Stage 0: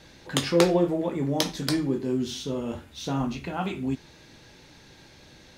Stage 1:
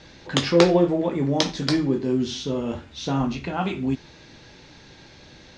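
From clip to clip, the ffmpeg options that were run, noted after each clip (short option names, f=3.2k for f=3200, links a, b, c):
-af "lowpass=f=6.4k:w=0.5412,lowpass=f=6.4k:w=1.3066,volume=4dB"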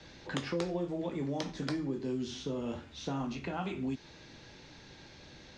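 -filter_complex "[0:a]acrossover=split=100|230|2700|6400[a][b][c][d][e];[a]acompressor=threshold=-48dB:ratio=4[f];[b]acompressor=threshold=-37dB:ratio=4[g];[c]acompressor=threshold=-30dB:ratio=4[h];[d]acompressor=threshold=-48dB:ratio=4[i];[e]acompressor=threshold=-46dB:ratio=4[j];[f][g][h][i][j]amix=inputs=5:normalize=0,volume=-5.5dB"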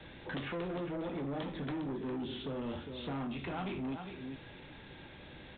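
-af "aecho=1:1:406:0.282,aresample=8000,asoftclip=type=tanh:threshold=-37dB,aresample=44100,volume=2.5dB"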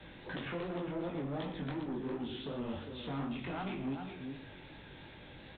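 -af "flanger=delay=16.5:depth=6.5:speed=2.7,aecho=1:1:116:0.266,volume=2dB"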